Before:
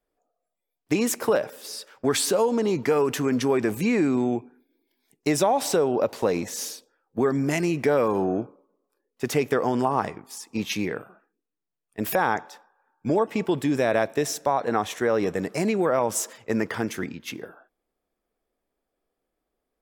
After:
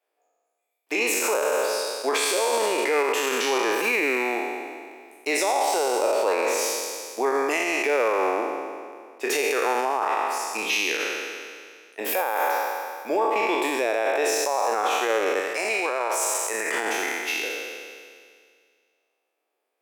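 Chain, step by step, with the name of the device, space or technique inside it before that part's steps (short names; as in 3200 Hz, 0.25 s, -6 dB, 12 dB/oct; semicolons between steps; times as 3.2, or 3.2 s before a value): spectral trails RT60 2.03 s; laptop speaker (HPF 380 Hz 24 dB/oct; bell 850 Hz +4 dB 0.39 oct; bell 2500 Hz +8 dB 0.45 oct; limiter -14 dBFS, peak gain reduction 11 dB); 15.4–16.74 low shelf 430 Hz -8 dB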